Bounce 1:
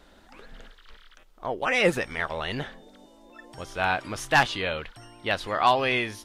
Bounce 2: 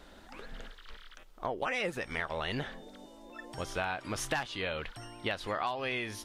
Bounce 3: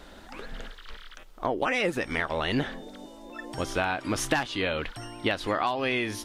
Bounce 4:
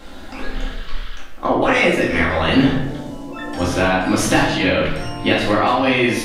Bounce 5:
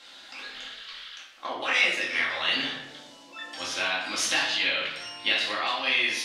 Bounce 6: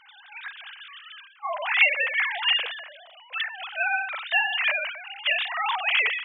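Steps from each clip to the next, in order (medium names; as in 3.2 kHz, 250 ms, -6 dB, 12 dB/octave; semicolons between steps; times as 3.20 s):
compression 12:1, threshold -31 dBFS, peak gain reduction 17 dB; trim +1 dB
dynamic bell 290 Hz, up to +7 dB, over -54 dBFS, Q 2.3; trim +6 dB
simulated room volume 230 m³, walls mixed, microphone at 2.2 m; trim +4 dB
band-pass filter 4 kHz, Q 1.1
formants replaced by sine waves; trim +2 dB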